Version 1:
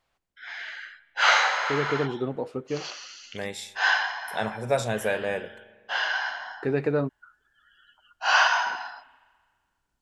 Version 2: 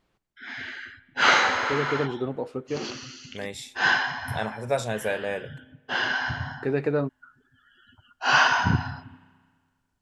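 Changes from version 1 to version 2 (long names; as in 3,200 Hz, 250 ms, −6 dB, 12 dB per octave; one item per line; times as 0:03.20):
second voice: send −9.5 dB
background: remove Chebyshev high-pass filter 620 Hz, order 3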